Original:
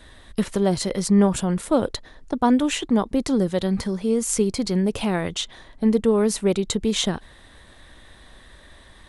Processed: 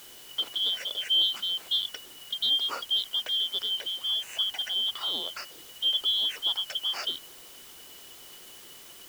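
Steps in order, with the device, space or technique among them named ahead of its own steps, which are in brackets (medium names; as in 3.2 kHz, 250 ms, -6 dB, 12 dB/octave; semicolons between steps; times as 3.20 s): split-band scrambled radio (four frequency bands reordered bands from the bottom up 2413; band-pass 340–3000 Hz; white noise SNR 18 dB); trim -4.5 dB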